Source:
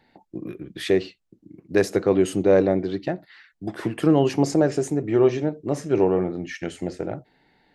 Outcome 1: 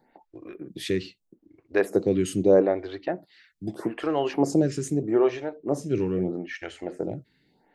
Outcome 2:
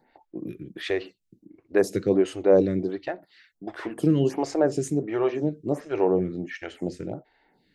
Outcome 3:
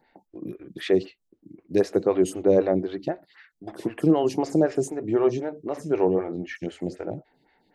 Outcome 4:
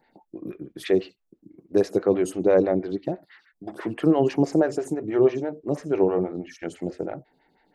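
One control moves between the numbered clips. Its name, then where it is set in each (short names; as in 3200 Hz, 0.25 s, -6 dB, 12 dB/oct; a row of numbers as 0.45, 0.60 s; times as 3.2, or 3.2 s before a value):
photocell phaser, rate: 0.79, 1.4, 3.9, 6.1 Hz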